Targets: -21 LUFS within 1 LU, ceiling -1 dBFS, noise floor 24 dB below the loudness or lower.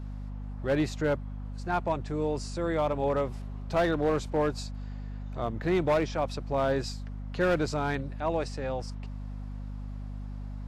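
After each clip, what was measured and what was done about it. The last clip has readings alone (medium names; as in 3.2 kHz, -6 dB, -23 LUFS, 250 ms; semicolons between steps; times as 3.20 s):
clipped samples 1.0%; clipping level -19.5 dBFS; hum 50 Hz; highest harmonic 250 Hz; hum level -35 dBFS; loudness -31.0 LUFS; peak level -19.5 dBFS; loudness target -21.0 LUFS
-> clip repair -19.5 dBFS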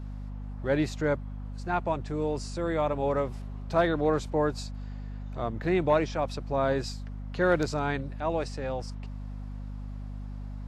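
clipped samples 0.0%; hum 50 Hz; highest harmonic 250 Hz; hum level -35 dBFS
-> de-hum 50 Hz, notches 5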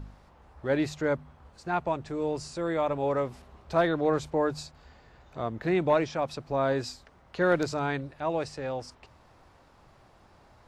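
hum not found; loudness -29.5 LUFS; peak level -11.0 dBFS; loudness target -21.0 LUFS
-> trim +8.5 dB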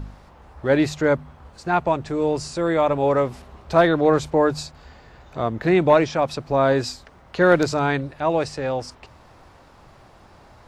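loudness -21.0 LUFS; peak level -2.5 dBFS; noise floor -50 dBFS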